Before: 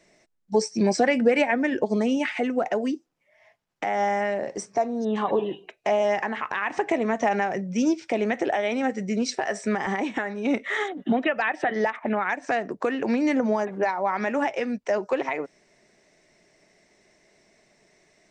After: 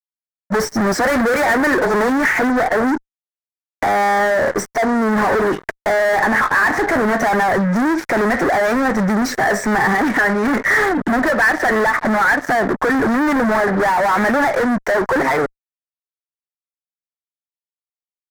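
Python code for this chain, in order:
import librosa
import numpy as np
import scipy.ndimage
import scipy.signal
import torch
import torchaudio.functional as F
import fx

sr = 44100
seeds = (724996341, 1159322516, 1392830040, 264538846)

y = fx.spec_box(x, sr, start_s=1.04, length_s=1.05, low_hz=310.0, high_hz=7800.0, gain_db=7)
y = fx.fuzz(y, sr, gain_db=40.0, gate_db=-46.0)
y = fx.high_shelf_res(y, sr, hz=2200.0, db=-7.0, q=3.0)
y = y * 10.0 ** (-2.0 / 20.0)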